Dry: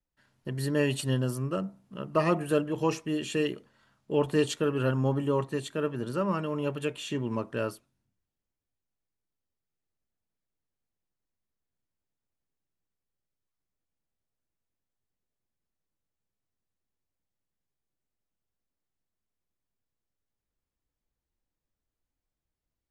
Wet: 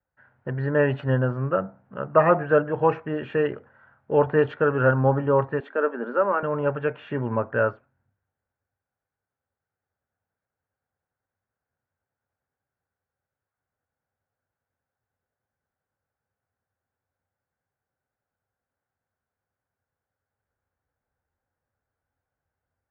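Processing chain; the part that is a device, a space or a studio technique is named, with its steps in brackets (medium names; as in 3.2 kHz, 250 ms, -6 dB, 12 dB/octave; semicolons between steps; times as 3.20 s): bass cabinet (cabinet simulation 74–2000 Hz, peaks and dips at 93 Hz +8 dB, 190 Hz -6 dB, 320 Hz -7 dB, 530 Hz +5 dB, 790 Hz +7 dB, 1.5 kHz +10 dB); 5.60–6.43 s: elliptic high-pass 220 Hz, stop band 40 dB; trim +5.5 dB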